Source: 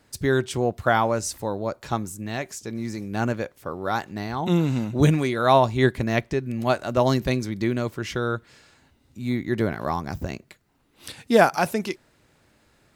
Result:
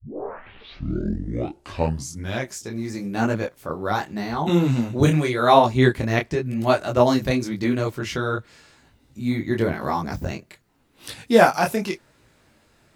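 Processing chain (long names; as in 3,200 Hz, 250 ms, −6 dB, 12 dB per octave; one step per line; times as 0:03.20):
turntable start at the beginning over 2.60 s
micro pitch shift up and down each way 31 cents
level +6 dB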